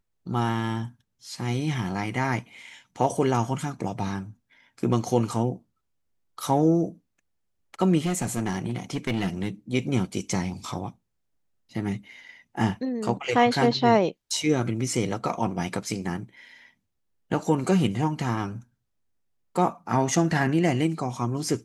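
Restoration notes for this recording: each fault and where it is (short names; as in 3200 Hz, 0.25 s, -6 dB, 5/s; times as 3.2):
8.05–9.48 clipped -21.5 dBFS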